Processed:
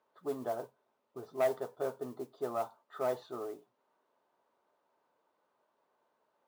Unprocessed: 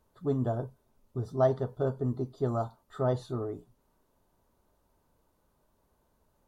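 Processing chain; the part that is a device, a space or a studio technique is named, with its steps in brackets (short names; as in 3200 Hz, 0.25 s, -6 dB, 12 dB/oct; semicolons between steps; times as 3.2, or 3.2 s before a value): carbon microphone (BPF 490–3100 Hz; soft clip -22.5 dBFS, distortion -14 dB; modulation noise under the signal 23 dB); HPF 44 Hz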